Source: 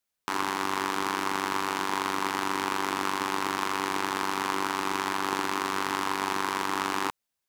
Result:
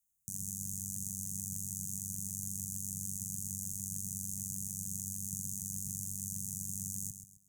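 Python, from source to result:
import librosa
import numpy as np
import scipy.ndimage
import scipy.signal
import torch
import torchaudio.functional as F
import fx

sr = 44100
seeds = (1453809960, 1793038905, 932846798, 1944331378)

p1 = scipy.signal.sosfilt(scipy.signal.cheby1(5, 1.0, [180.0, 6500.0], 'bandstop', fs=sr, output='sos'), x)
p2 = p1 + fx.echo_feedback(p1, sr, ms=133, feedback_pct=31, wet_db=-9.5, dry=0)
y = p2 * 10.0 ** (5.0 / 20.0)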